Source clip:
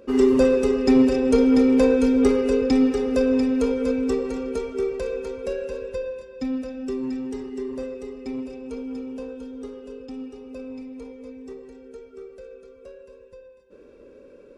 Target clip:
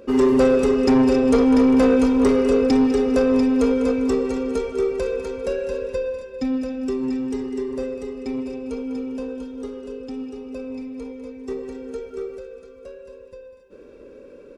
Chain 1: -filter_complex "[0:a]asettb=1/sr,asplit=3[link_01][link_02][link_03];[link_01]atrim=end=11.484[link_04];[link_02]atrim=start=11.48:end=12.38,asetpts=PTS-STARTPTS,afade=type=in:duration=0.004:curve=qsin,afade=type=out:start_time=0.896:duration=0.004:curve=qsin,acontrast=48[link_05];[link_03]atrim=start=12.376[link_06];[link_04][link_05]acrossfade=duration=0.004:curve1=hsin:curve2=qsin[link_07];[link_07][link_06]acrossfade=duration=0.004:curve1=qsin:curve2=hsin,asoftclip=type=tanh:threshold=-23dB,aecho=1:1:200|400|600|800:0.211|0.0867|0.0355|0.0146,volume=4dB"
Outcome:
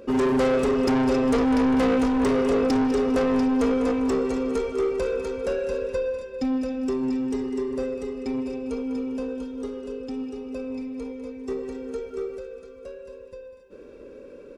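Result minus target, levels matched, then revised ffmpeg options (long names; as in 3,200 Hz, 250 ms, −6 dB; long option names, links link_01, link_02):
soft clipping: distortion +8 dB
-filter_complex "[0:a]asettb=1/sr,asplit=3[link_01][link_02][link_03];[link_01]atrim=end=11.484[link_04];[link_02]atrim=start=11.48:end=12.38,asetpts=PTS-STARTPTS,afade=type=in:duration=0.004:curve=qsin,afade=type=out:start_time=0.896:duration=0.004:curve=qsin,acontrast=48[link_05];[link_03]atrim=start=12.376[link_06];[link_04][link_05]acrossfade=duration=0.004:curve1=hsin:curve2=qsin[link_07];[link_07][link_06]acrossfade=duration=0.004:curve1=qsin:curve2=hsin,asoftclip=type=tanh:threshold=-15dB,aecho=1:1:200|400|600|800:0.211|0.0867|0.0355|0.0146,volume=4dB"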